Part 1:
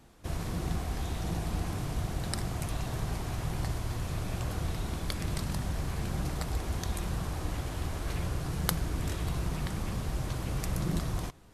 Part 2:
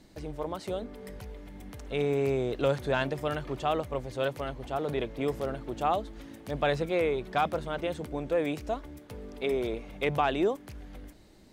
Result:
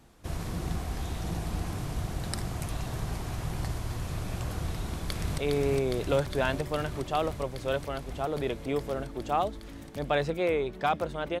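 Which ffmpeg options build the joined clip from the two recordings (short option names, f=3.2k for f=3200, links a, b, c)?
-filter_complex "[0:a]apad=whole_dur=11.4,atrim=end=11.4,atrim=end=5.382[a];[1:a]atrim=start=1.898:end=7.92[b];[a][b]acrossfade=d=0.004:c1=hsin:c2=hsin,asplit=2[c][d];[d]afade=t=in:st=4.7:d=0.01,afade=t=out:st=5.38:d=0.01,aecho=0:1:410|820|1230|1640|2050|2460|2870|3280|3690|4100|4510|4920:0.668344|0.568092|0.482878|0.410447|0.34888|0.296548|0.252066|0.214256|0.182117|0.1548|0.13158|0.111843[e];[c][e]amix=inputs=2:normalize=0"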